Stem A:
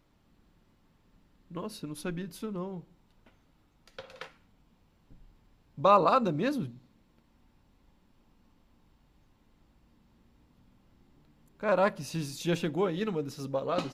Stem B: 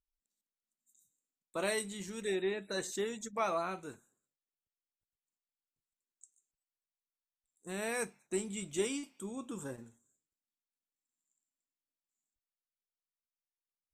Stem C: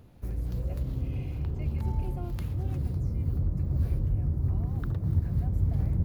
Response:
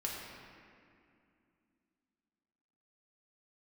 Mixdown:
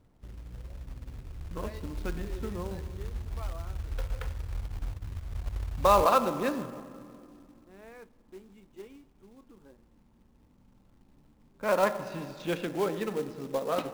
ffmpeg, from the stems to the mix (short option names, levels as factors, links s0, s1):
-filter_complex "[0:a]acrossover=split=280|3000[s0][s1][s2];[s0]acompressor=threshold=0.00355:ratio=2[s3];[s3][s1][s2]amix=inputs=3:normalize=0,volume=0.841,asplit=2[s4][s5];[s5]volume=0.398[s6];[1:a]highpass=210,volume=0.251,asplit=2[s7][s8];[s8]volume=0.0841[s9];[2:a]acompressor=threshold=0.0398:ratio=16,asubboost=boost=11:cutoff=50,volume=0.251,asplit=2[s10][s11];[s11]volume=0.133[s12];[3:a]atrim=start_sample=2205[s13];[s6][s9][s12]amix=inputs=3:normalize=0[s14];[s14][s13]afir=irnorm=-1:irlink=0[s15];[s4][s7][s10][s15]amix=inputs=4:normalize=0,adynamicsmooth=sensitivity=5.5:basefreq=1700,acrusher=bits=4:mode=log:mix=0:aa=0.000001"